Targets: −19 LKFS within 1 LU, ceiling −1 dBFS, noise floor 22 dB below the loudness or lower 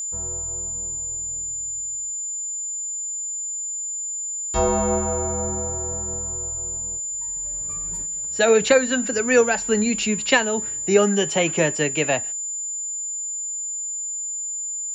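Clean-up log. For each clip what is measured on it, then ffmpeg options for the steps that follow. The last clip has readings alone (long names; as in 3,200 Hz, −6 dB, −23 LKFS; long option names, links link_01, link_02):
interfering tone 7,100 Hz; level of the tone −26 dBFS; integrated loudness −22.5 LKFS; sample peak −5.0 dBFS; target loudness −19.0 LKFS
→ -af "bandreject=frequency=7100:width=30"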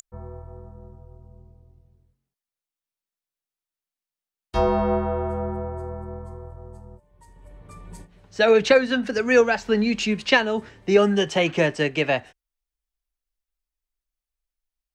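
interfering tone none found; integrated loudness −21.5 LKFS; sample peak −5.5 dBFS; target loudness −19.0 LKFS
→ -af "volume=2.5dB"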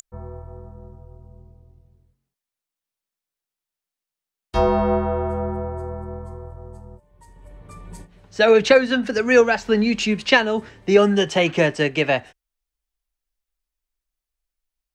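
integrated loudness −19.0 LKFS; sample peak −3.0 dBFS; background noise floor −88 dBFS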